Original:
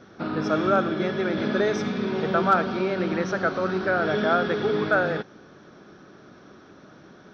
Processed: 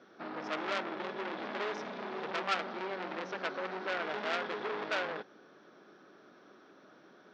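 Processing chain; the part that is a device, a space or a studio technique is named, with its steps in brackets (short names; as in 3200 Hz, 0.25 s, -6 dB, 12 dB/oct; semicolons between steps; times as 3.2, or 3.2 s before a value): public-address speaker with an overloaded transformer (core saturation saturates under 2900 Hz; BPF 290–5400 Hz); gain -7.5 dB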